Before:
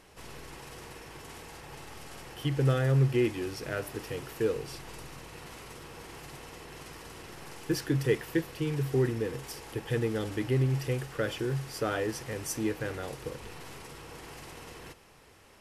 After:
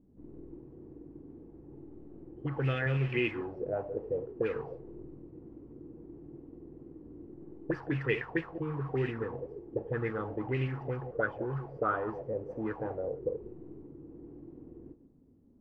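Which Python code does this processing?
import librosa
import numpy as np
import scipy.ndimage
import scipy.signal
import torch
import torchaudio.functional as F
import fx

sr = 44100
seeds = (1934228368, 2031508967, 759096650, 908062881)

y = fx.reverse_delay(x, sr, ms=110, wet_db=-10.5)
y = fx.envelope_lowpass(y, sr, base_hz=240.0, top_hz=2600.0, q=4.9, full_db=-22.5, direction='up')
y = y * librosa.db_to_amplitude(-5.5)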